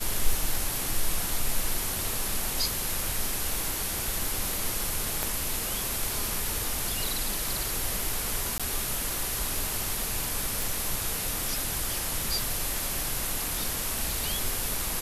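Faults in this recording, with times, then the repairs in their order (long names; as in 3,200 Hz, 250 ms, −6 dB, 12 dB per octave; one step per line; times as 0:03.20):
surface crackle 53 per second −36 dBFS
0:05.23: click −13 dBFS
0:08.58–0:08.60: drop-out 16 ms
0:10.62: click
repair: click removal
repair the gap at 0:08.58, 16 ms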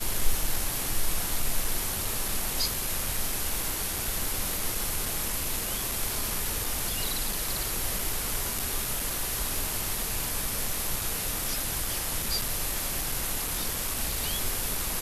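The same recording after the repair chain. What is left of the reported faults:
0:05.23: click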